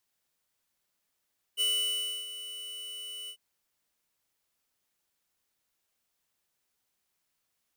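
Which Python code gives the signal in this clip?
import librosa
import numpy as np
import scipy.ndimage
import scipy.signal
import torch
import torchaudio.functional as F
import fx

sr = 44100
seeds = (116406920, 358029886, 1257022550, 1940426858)

y = fx.adsr_tone(sr, wave='square', hz=2970.0, attack_ms=39.0, decay_ms=650.0, sustain_db=-14.0, held_s=1.72, release_ms=75.0, level_db=-27.0)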